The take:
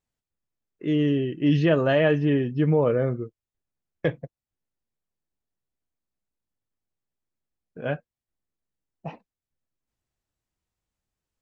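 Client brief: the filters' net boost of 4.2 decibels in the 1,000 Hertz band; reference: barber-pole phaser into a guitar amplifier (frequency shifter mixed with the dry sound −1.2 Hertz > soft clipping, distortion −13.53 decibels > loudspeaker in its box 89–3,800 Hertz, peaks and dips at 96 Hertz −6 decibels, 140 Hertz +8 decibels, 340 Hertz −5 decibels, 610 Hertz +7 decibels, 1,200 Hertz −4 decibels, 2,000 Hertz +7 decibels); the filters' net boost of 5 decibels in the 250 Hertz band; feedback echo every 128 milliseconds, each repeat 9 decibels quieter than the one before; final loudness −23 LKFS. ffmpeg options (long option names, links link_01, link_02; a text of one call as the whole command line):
ffmpeg -i in.wav -filter_complex "[0:a]equalizer=frequency=250:width_type=o:gain=7.5,equalizer=frequency=1000:width_type=o:gain=3.5,aecho=1:1:128|256|384|512:0.355|0.124|0.0435|0.0152,asplit=2[link_01][link_02];[link_02]afreqshift=-1.2[link_03];[link_01][link_03]amix=inputs=2:normalize=1,asoftclip=threshold=-17dB,highpass=89,equalizer=frequency=96:width_type=q:width=4:gain=-6,equalizer=frequency=140:width_type=q:width=4:gain=8,equalizer=frequency=340:width_type=q:width=4:gain=-5,equalizer=frequency=610:width_type=q:width=4:gain=7,equalizer=frequency=1200:width_type=q:width=4:gain=-4,equalizer=frequency=2000:width_type=q:width=4:gain=7,lowpass=frequency=3800:width=0.5412,lowpass=frequency=3800:width=1.3066,volume=1.5dB" out.wav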